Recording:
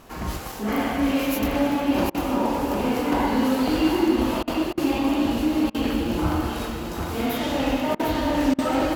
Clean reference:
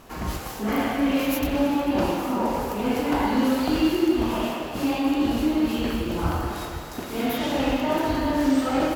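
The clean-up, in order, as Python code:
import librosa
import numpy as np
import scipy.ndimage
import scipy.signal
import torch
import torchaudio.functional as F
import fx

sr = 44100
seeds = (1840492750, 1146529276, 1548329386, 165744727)

y = fx.fix_interpolate(x, sr, at_s=(0.52, 1.72, 4.54, 6.59), length_ms=2.8)
y = fx.fix_interpolate(y, sr, at_s=(2.1, 4.43, 4.73, 5.7, 7.95, 8.54), length_ms=44.0)
y = fx.fix_echo_inverse(y, sr, delay_ms=749, level_db=-5.5)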